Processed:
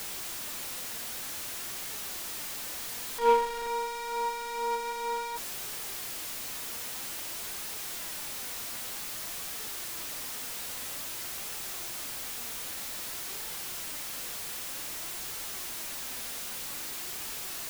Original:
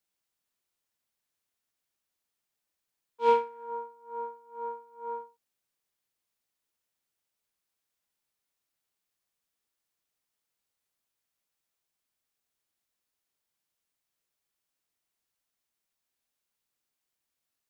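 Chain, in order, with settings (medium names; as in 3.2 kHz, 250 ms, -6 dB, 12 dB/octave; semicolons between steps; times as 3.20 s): jump at every zero crossing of -31 dBFS; flange 0.52 Hz, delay 2.2 ms, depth 2.2 ms, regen +77%; trim +4.5 dB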